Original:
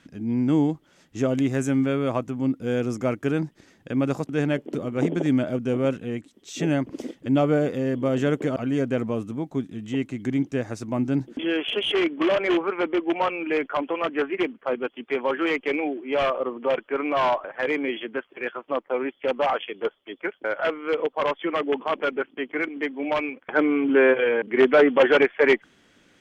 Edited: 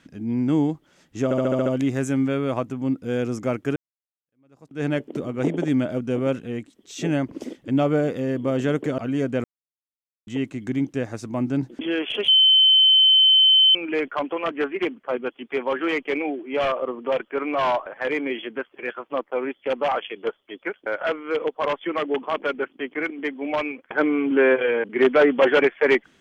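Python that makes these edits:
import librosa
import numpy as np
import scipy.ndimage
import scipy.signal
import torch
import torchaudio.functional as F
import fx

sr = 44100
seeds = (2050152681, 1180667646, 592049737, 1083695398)

y = fx.edit(x, sr, fx.stutter(start_s=1.24, slice_s=0.07, count=7),
    fx.fade_in_span(start_s=3.34, length_s=1.09, curve='exp'),
    fx.silence(start_s=9.02, length_s=0.83),
    fx.bleep(start_s=11.86, length_s=1.47, hz=3070.0, db=-11.5), tone=tone)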